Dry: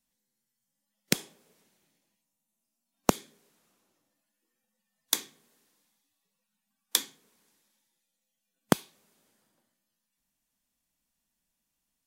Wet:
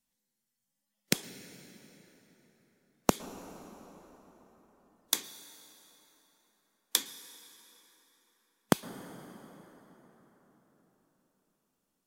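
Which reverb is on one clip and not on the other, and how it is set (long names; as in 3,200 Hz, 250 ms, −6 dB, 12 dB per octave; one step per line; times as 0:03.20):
dense smooth reverb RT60 4.7 s, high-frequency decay 0.6×, pre-delay 100 ms, DRR 13.5 dB
level −2 dB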